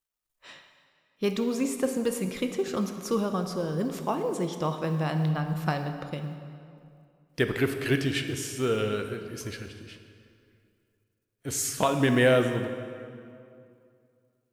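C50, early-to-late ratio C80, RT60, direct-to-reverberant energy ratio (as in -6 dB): 7.5 dB, 8.5 dB, 2.4 s, 6.0 dB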